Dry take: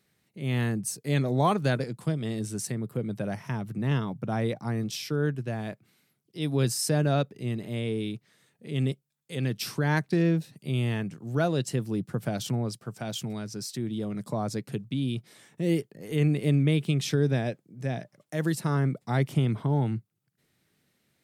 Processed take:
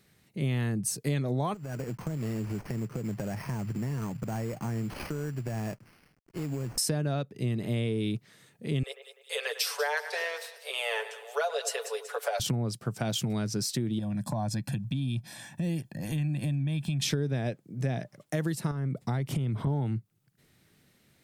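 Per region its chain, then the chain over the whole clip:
0:01.54–0:06.78: variable-slope delta modulation 16 kbit/s + downward compressor 8 to 1, threshold −37 dBFS + bad sample-rate conversion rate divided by 6×, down none, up hold
0:08.83–0:12.40: Butterworth high-pass 450 Hz 96 dB per octave + comb filter 7 ms, depth 71% + echo with a time of its own for lows and highs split 2,900 Hz, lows 100 ms, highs 189 ms, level −14 dB
0:13.99–0:17.02: comb filter 1.2 ms, depth 100% + downward compressor 2.5 to 1, threshold −39 dBFS
0:18.71–0:19.67: low-shelf EQ 190 Hz +5.5 dB + downward compressor 5 to 1, threshold −32 dBFS
whole clip: low-shelf EQ 77 Hz +9 dB; downward compressor 10 to 1, threshold −32 dBFS; level +6 dB

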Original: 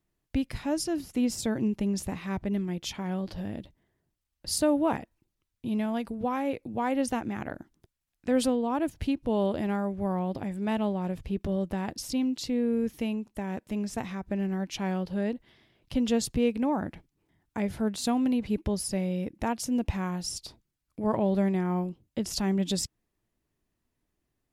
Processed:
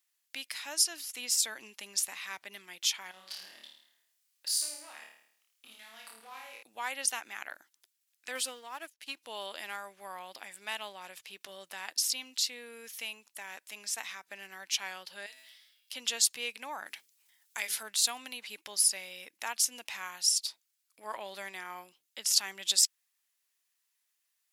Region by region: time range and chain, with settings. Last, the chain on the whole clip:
0:03.11–0:06.63: downward compressor 8 to 1, threshold −37 dBFS + hard clipping −35 dBFS + flutter between parallel walls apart 4.6 metres, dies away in 0.65 s
0:08.35–0:09.15: leveller curve on the samples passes 1 + expander for the loud parts 2.5 to 1, over −35 dBFS
0:15.26–0:15.93: spectral tilt +4 dB per octave + tuned comb filter 130 Hz, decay 0.87 s, mix 80% + level that may fall only so fast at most 61 dB per second
0:16.86–0:17.83: high-shelf EQ 2,600 Hz +10 dB + mains-hum notches 50/100/150/200/250/300/350/400/450 Hz
whole clip: high-pass filter 1,400 Hz 12 dB per octave; high-shelf EQ 2,700 Hz +10.5 dB

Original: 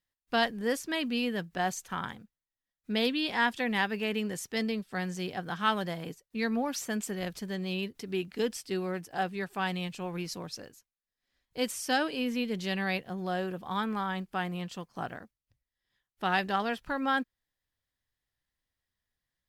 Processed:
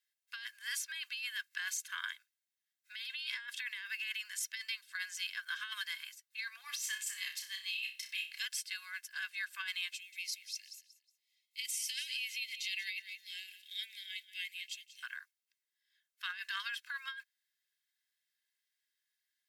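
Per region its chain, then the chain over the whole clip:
0:06.61–0:08.41: high-pass filter 740 Hz 24 dB per octave + parametric band 1,500 Hz −13.5 dB 0.2 octaves + flutter between parallel walls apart 5.3 metres, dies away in 0.32 s
0:09.94–0:15.03: Butterworth high-pass 2,000 Hz 72 dB per octave + repeating echo 183 ms, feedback 28%, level −15 dB
whole clip: Butterworth high-pass 1,500 Hz 36 dB per octave; comb filter 1.9 ms, depth 70%; compressor whose output falls as the input rises −38 dBFS, ratio −1; level −1.5 dB

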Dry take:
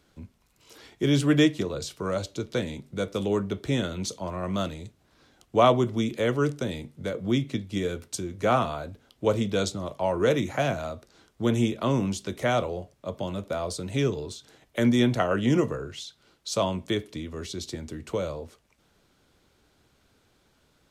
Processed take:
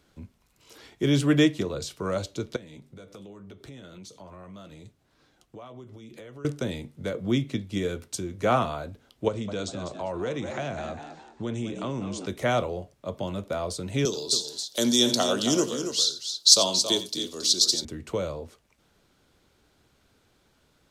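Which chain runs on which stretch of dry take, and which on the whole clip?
0:02.56–0:06.45: downward compressor 8 to 1, threshold −37 dBFS + flanger 1.4 Hz, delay 5.6 ms, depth 2.1 ms, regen −58%
0:09.28–0:12.26: echo with shifted repeats 199 ms, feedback 37%, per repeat +74 Hz, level −12 dB + downward compressor 2.5 to 1, threshold −30 dBFS + Butterworth low-pass 9,100 Hz 96 dB per octave
0:14.05–0:17.85: high-pass filter 240 Hz + high shelf with overshoot 3,100 Hz +13.5 dB, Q 3 + multi-tap delay 88/275 ms −14.5/−9 dB
whole clip: no processing

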